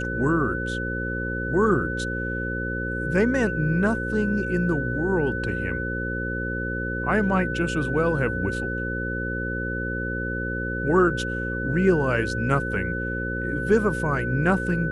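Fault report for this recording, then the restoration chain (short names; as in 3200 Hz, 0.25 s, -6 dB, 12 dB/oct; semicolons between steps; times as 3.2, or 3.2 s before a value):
buzz 60 Hz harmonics 9 -30 dBFS
tone 1500 Hz -29 dBFS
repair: de-hum 60 Hz, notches 9; notch 1500 Hz, Q 30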